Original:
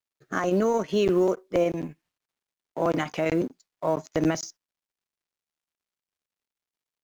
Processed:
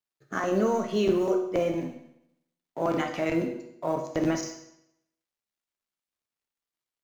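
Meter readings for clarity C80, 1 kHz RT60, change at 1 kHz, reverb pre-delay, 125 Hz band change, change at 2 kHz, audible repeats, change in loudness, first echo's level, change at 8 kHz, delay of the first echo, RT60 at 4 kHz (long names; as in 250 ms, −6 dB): 10.0 dB, 0.80 s, −1.5 dB, 8 ms, −3.0 dB, −1.5 dB, no echo audible, −1.5 dB, no echo audible, can't be measured, no echo audible, 0.75 s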